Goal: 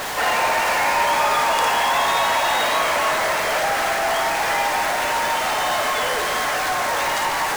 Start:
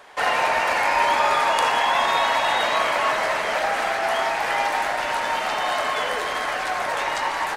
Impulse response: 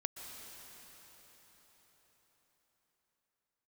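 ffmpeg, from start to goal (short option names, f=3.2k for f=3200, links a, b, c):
-filter_complex "[0:a]aeval=exprs='val(0)+0.5*0.1*sgn(val(0))':c=same,asplit=2[a][b];[b]highshelf=f=4.3k:t=q:w=1.5:g=12[c];[1:a]atrim=start_sample=2205,adelay=55[d];[c][d]afir=irnorm=-1:irlink=0,volume=-15.5dB[e];[a][e]amix=inputs=2:normalize=0,volume=-2dB"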